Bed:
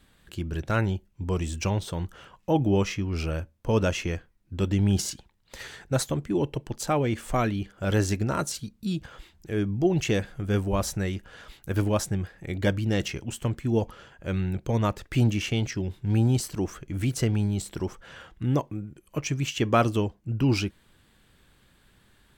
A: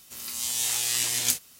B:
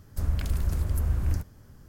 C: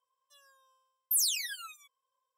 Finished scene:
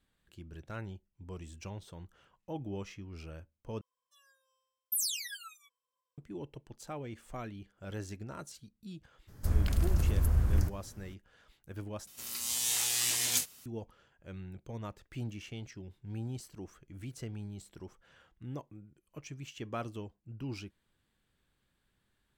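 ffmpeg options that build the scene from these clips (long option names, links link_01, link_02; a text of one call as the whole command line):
ffmpeg -i bed.wav -i cue0.wav -i cue1.wav -i cue2.wav -filter_complex "[0:a]volume=-17dB[link_01];[3:a]aecho=1:1:6.1:0.73[link_02];[1:a]asoftclip=type=tanh:threshold=-16.5dB[link_03];[link_01]asplit=3[link_04][link_05][link_06];[link_04]atrim=end=3.814[link_07];[link_02]atrim=end=2.37,asetpts=PTS-STARTPTS,volume=-6.5dB[link_08];[link_05]atrim=start=6.176:end=12.074[link_09];[link_03]atrim=end=1.59,asetpts=PTS-STARTPTS,volume=-3dB[link_10];[link_06]atrim=start=13.656[link_11];[2:a]atrim=end=1.88,asetpts=PTS-STARTPTS,volume=-1dB,afade=type=in:duration=0.02,afade=type=out:start_time=1.86:duration=0.02,adelay=9270[link_12];[link_07][link_08]acrossfade=duration=0.004:curve1=hsin:curve2=hsin[link_13];[link_13][link_09]acrossfade=duration=0.004:curve1=hsin:curve2=hsin[link_14];[link_14][link_10]acrossfade=duration=0.004:curve1=hsin:curve2=hsin[link_15];[link_15][link_11]acrossfade=duration=0.004:curve1=hsin:curve2=hsin[link_16];[link_16][link_12]amix=inputs=2:normalize=0" out.wav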